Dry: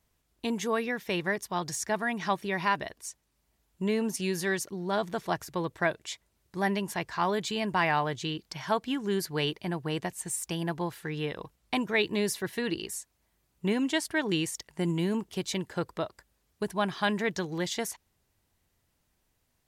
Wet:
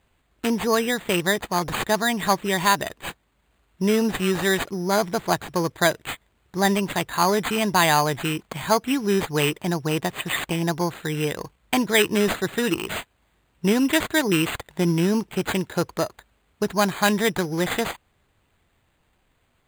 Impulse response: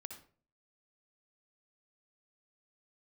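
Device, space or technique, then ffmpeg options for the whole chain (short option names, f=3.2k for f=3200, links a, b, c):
crushed at another speed: -af "asetrate=22050,aresample=44100,acrusher=samples=16:mix=1:aa=0.000001,asetrate=88200,aresample=44100,volume=8dB"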